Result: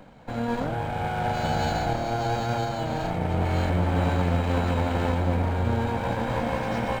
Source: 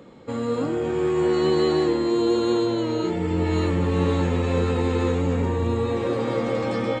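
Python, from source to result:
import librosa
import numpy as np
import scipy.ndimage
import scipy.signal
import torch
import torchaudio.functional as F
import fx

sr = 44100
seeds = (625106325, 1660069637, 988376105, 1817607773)

y = fx.lower_of_two(x, sr, delay_ms=1.3)
y = np.interp(np.arange(len(y)), np.arange(len(y))[::4], y[::4])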